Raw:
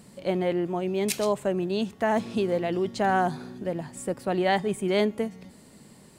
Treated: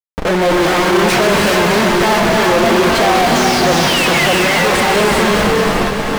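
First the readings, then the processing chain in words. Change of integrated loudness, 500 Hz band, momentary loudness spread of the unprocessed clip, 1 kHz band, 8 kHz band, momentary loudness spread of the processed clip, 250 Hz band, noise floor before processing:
+15.0 dB, +13.0 dB, 9 LU, +16.0 dB, +19.0 dB, 2 LU, +13.0 dB, -53 dBFS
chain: treble shelf 11 kHz -4 dB; level rider gain up to 11.5 dB; painted sound fall, 3.34–4.44 s, 1.5–6.7 kHz -31 dBFS; Schmitt trigger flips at -31.5 dBFS; gated-style reverb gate 430 ms rising, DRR 1.5 dB; flange 0.63 Hz, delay 3.7 ms, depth 2.9 ms, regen -37%; overdrive pedal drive 23 dB, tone 2.8 kHz, clips at -12 dBFS; on a send: multi-head delay 302 ms, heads first and second, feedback 44%, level -12 dB; on the sum: trim +5.5 dB

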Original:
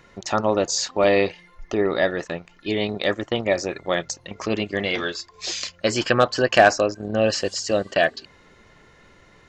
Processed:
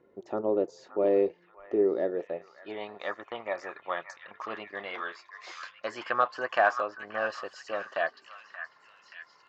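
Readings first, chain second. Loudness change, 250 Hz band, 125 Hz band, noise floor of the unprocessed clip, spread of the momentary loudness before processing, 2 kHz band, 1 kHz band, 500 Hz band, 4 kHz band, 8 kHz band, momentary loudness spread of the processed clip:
-9.0 dB, -10.5 dB, -22.0 dB, -54 dBFS, 11 LU, -9.0 dB, -7.0 dB, -8.5 dB, -19.0 dB, -27.0 dB, 17 LU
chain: band-pass sweep 390 Hz -> 1.1 kHz, 2.06–2.89 s; repeats whose band climbs or falls 579 ms, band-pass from 1.5 kHz, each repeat 0.7 oct, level -6.5 dB; trim -1.5 dB

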